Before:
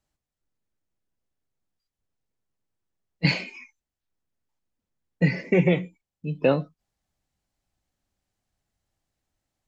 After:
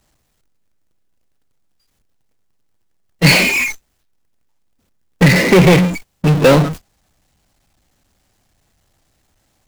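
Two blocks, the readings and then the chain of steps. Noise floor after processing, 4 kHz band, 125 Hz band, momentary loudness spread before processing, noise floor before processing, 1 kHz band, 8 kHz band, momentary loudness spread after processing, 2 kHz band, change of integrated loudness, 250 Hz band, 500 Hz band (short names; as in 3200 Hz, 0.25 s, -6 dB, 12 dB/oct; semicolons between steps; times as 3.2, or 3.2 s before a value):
-65 dBFS, +16.5 dB, +13.0 dB, 18 LU, under -85 dBFS, +17.0 dB, n/a, 10 LU, +16.0 dB, +12.5 dB, +12.0 dB, +11.5 dB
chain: power-law curve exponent 0.35; gate -28 dBFS, range -33 dB; gain +5 dB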